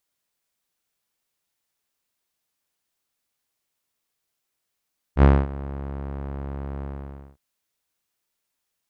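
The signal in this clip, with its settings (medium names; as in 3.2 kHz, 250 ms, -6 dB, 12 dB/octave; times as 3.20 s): synth note saw C#2 12 dB/octave, low-pass 1.2 kHz, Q 0.79, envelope 0.5 oct, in 0.41 s, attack 67 ms, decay 0.24 s, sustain -20 dB, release 0.55 s, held 1.66 s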